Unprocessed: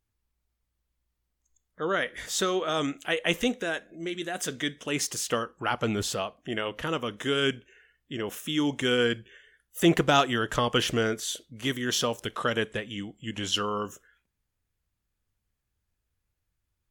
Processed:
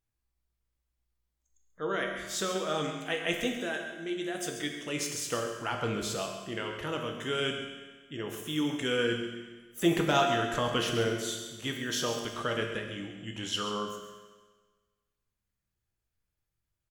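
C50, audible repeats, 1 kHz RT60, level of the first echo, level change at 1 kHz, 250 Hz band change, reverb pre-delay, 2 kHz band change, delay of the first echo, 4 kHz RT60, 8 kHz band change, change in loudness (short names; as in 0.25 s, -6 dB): 4.0 dB, 1, 1.4 s, -11.0 dB, -3.5 dB, -4.0 dB, 5 ms, -4.0 dB, 0.135 s, 1.4 s, -3.5 dB, -4.0 dB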